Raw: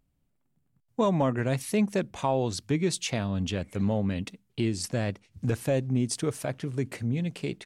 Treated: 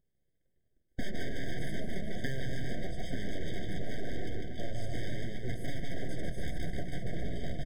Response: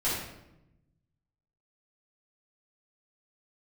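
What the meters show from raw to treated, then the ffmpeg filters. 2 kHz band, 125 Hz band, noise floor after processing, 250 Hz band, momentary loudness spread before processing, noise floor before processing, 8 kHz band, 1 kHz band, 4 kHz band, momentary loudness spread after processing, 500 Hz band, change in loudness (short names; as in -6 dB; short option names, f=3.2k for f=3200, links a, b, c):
-4.0 dB, -9.0 dB, -76 dBFS, -12.0 dB, 6 LU, -74 dBFS, -16.5 dB, -15.0 dB, -8.5 dB, 2 LU, -12.0 dB, -10.5 dB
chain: -filter_complex "[0:a]tiltshelf=f=1.2k:g=9.5,acrossover=split=2800[a][b];[b]acompressor=threshold=-55dB:ratio=4:attack=1:release=60[c];[a][c]amix=inputs=2:normalize=0,highpass=370,bandreject=f=60:t=h:w=6,bandreject=f=120:t=h:w=6,bandreject=f=180:t=h:w=6,bandreject=f=240:t=h:w=6,bandreject=f=300:t=h:w=6,bandreject=f=360:t=h:w=6,bandreject=f=420:t=h:w=6,bandreject=f=480:t=h:w=6,bandreject=f=540:t=h:w=6,aecho=1:1:150|285|406.5|515.8|614.3:0.631|0.398|0.251|0.158|0.1,aeval=exprs='0.355*(cos(1*acos(clip(val(0)/0.355,-1,1)))-cos(1*PI/2))+0.0178*(cos(6*acos(clip(val(0)/0.355,-1,1)))-cos(6*PI/2))':c=same,aeval=exprs='abs(val(0))':c=same,flanger=delay=4.8:depth=1.3:regen=-62:speed=1.5:shape=sinusoidal,acompressor=threshold=-29dB:ratio=12,equalizer=f=710:t=o:w=2.2:g=-11,aeval=exprs='0.0237*(abs(mod(val(0)/0.0237+3,4)-2)-1)':c=same,afftfilt=real='re*eq(mod(floor(b*sr/1024/760),2),0)':imag='im*eq(mod(floor(b*sr/1024/760),2),0)':win_size=1024:overlap=0.75,volume=9dB"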